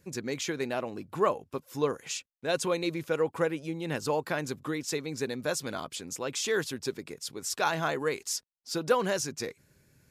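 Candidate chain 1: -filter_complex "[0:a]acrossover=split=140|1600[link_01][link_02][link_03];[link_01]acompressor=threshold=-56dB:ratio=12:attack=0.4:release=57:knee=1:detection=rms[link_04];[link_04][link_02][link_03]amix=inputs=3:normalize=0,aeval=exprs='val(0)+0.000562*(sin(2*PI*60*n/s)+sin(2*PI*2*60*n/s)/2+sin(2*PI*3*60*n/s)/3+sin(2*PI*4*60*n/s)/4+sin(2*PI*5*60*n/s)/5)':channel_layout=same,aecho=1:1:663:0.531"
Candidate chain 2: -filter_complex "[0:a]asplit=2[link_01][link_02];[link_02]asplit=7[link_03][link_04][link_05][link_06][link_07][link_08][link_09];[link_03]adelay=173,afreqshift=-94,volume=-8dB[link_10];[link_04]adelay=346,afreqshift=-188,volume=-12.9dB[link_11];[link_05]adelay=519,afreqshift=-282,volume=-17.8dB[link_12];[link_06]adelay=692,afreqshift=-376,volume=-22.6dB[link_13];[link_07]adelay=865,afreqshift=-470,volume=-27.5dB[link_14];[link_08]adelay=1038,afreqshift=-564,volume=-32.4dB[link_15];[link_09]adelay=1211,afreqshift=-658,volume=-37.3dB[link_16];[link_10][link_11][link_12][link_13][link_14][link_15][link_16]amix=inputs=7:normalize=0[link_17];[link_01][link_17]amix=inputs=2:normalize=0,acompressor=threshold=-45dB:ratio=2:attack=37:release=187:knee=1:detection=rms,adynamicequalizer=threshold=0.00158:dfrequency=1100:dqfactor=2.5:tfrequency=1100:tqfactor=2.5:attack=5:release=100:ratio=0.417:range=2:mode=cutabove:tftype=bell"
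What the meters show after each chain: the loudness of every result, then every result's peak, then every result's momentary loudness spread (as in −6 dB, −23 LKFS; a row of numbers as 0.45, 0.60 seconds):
−31.0, −40.5 LKFS; −11.5, −25.0 dBFS; 7, 4 LU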